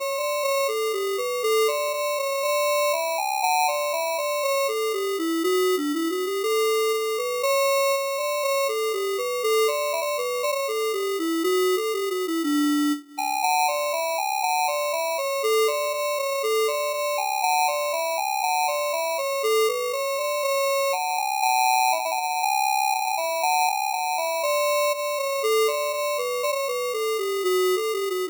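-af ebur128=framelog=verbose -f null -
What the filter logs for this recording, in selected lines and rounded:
Integrated loudness:
  I:         -23.4 LUFS
  Threshold: -33.4 LUFS
Loudness range:
  LRA:         1.5 LU
  Threshold: -43.4 LUFS
  LRA low:   -23.9 LUFS
  LRA high:  -22.5 LUFS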